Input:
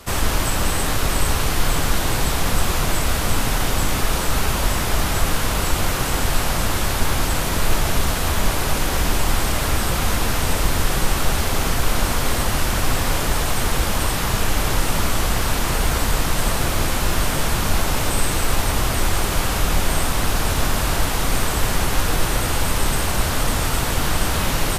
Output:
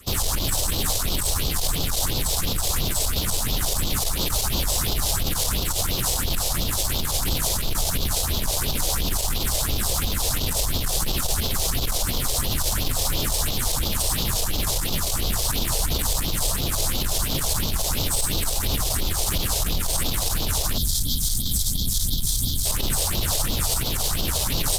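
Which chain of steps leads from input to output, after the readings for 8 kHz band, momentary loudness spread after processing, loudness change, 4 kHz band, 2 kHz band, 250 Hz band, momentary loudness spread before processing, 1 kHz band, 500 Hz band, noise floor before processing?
+1.5 dB, 1 LU, -2.0 dB, 0.0 dB, -10.0 dB, -6.0 dB, 0 LU, -9.0 dB, -7.0 dB, -22 dBFS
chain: spectral gain 20.78–22.66, 280–3100 Hz -30 dB; phaser stages 4, 2.9 Hz, lowest notch 220–1800 Hz; limiter -15.5 dBFS, peak gain reduction 10.5 dB; added harmonics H 7 -23 dB, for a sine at -15.5 dBFS; resonant high shelf 3000 Hz +6 dB, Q 1.5

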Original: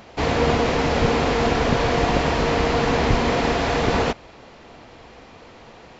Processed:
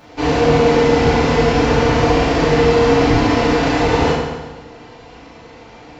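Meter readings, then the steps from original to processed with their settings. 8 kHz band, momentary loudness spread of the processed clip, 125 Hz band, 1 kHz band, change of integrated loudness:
n/a, 6 LU, +5.5 dB, +4.5 dB, +6.0 dB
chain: in parallel at -8 dB: overloaded stage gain 16.5 dB; on the sum: FDN reverb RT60 1.3 s, low-frequency decay 1.05×, high-frequency decay 0.8×, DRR -7.5 dB; gain -6.5 dB

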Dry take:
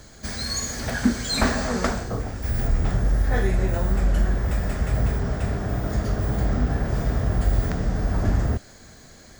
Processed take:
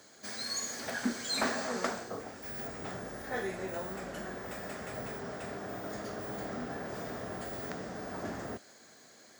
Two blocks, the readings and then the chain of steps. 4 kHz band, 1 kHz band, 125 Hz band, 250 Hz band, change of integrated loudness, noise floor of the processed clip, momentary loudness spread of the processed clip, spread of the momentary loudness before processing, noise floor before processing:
-7.5 dB, -7.5 dB, -24.5 dB, -13.0 dB, -13.0 dB, -58 dBFS, 9 LU, 5 LU, -47 dBFS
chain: HPF 290 Hz 12 dB/oct; gain -7.5 dB

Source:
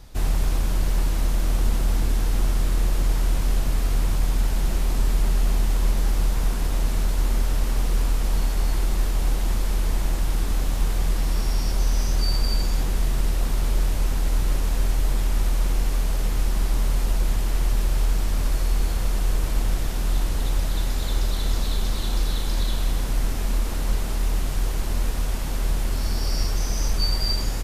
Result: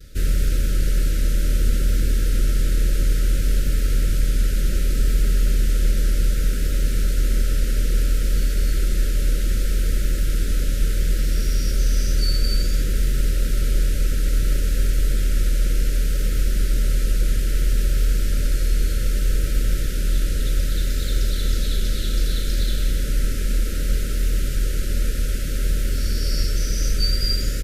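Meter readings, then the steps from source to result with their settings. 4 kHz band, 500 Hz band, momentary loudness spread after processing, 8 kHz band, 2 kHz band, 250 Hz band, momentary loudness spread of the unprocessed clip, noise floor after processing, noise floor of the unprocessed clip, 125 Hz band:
+2.0 dB, +1.0 dB, 3 LU, +2.5 dB, +2.0 dB, +1.5 dB, 3 LU, -22 dBFS, -25 dBFS, +2.5 dB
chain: vibrato 0.63 Hz 32 cents; Chebyshev band-stop 590–1300 Hz, order 5; gain +2.5 dB

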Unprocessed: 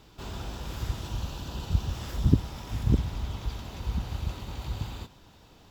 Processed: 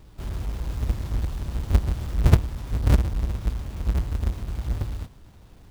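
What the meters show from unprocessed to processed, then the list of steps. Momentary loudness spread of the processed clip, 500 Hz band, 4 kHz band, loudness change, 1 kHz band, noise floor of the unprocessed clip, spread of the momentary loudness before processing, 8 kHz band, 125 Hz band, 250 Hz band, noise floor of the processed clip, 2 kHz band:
11 LU, +5.0 dB, -1.5 dB, +5.5 dB, +3.0 dB, -55 dBFS, 12 LU, +2.0 dB, +5.5 dB, +0.5 dB, -49 dBFS, +4.5 dB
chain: half-waves squared off; low shelf 120 Hz +11 dB; gain -5.5 dB

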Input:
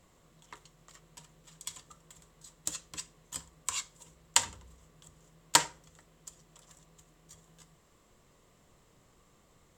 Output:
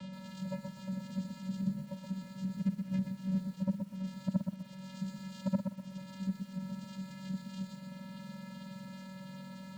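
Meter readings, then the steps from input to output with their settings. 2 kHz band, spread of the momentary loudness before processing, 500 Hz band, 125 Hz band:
-13.0 dB, 25 LU, +2.5 dB, +17.5 dB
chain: spectrum mirrored in octaves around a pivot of 860 Hz; air absorption 63 m; flipped gate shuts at -16 dBFS, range -25 dB; bell 3500 Hz +14 dB 1.9 oct; in parallel at +1.5 dB: upward compressor, threshold -41 dBFS; on the sum: pre-echo 75 ms -13 dB; vocoder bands 8, square 189 Hz; compressor 5:1, threshold -37 dBFS, peak gain reduction 19 dB; lo-fi delay 0.124 s, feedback 35%, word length 11-bit, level -5.5 dB; gain +6.5 dB

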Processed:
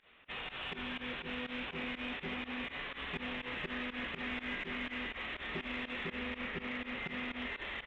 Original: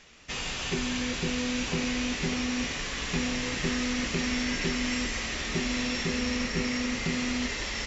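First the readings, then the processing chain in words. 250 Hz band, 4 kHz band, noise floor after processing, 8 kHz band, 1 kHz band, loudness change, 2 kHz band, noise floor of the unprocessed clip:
-13.0 dB, -11.0 dB, -53 dBFS, n/a, -6.5 dB, -10.0 dB, -6.5 dB, -35 dBFS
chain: downsampling 8000 Hz; resonator 67 Hz, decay 0.51 s, harmonics all, mix 60%; overdrive pedal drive 11 dB, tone 2400 Hz, clips at -20.5 dBFS; pump 123 bpm, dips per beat 2, -20 dB, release 91 ms; gain -4 dB

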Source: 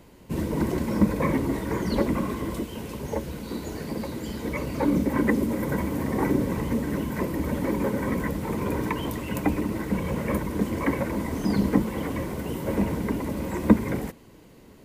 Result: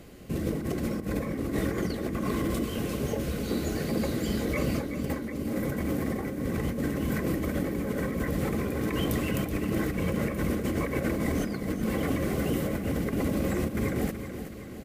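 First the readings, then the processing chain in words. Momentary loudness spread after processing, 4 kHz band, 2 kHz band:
3 LU, +1.0 dB, -1.5 dB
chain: negative-ratio compressor -30 dBFS, ratio -1; Butterworth band-stop 940 Hz, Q 4.5; on a send: feedback echo 0.376 s, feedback 54%, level -10 dB; on the sum: Opus 128 kbps 48000 Hz

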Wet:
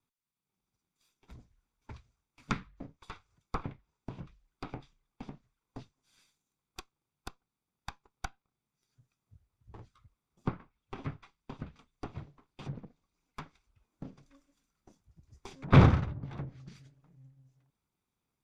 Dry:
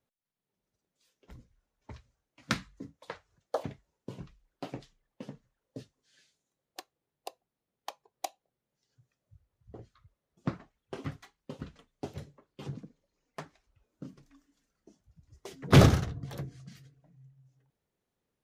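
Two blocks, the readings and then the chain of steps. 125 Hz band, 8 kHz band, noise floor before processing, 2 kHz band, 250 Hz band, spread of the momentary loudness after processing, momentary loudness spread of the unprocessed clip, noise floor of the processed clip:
-0.5 dB, -12.0 dB, under -85 dBFS, -2.5 dB, -1.5 dB, 24 LU, 21 LU, under -85 dBFS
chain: minimum comb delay 0.83 ms; treble ducked by the level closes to 2400 Hz, closed at -38 dBFS

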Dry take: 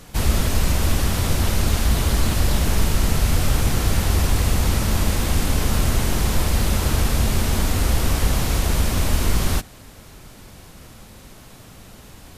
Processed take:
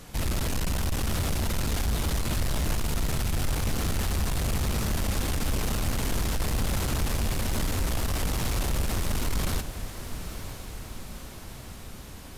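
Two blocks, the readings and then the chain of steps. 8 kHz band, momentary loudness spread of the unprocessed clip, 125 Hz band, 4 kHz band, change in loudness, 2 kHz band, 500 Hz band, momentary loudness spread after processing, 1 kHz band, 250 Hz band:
-7.0 dB, 1 LU, -8.5 dB, -7.0 dB, -8.0 dB, -7.0 dB, -7.0 dB, 13 LU, -7.0 dB, -7.0 dB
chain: soft clip -21 dBFS, distortion -9 dB; diffused feedback echo 0.96 s, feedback 58%, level -10.5 dB; gain -2.5 dB

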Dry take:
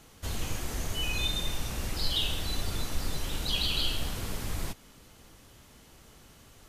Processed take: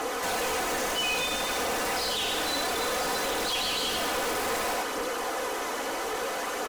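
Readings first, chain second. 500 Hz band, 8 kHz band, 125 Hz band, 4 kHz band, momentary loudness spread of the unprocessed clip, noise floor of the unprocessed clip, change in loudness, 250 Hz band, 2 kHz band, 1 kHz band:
+14.5 dB, +8.0 dB, -12.0 dB, +2.5 dB, 8 LU, -56 dBFS, +4.5 dB, +4.0 dB, +10.5 dB, +15.5 dB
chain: Chebyshev high-pass 370 Hz, order 3; phaser 0.6 Hz, delay 3.7 ms, feedback 32%; bell 3200 Hz -8 dB 1.3 oct; echo 98 ms -8 dB; overdrive pedal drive 36 dB, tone 1200 Hz, clips at -17 dBFS; hard clip -35.5 dBFS, distortion -7 dB; comb 4 ms, depth 54%; gain +7 dB

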